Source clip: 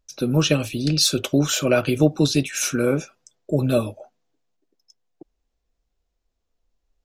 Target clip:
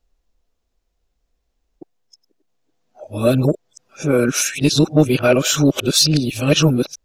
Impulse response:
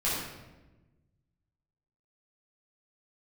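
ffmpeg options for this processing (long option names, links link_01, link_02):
-af "areverse,acontrast=25"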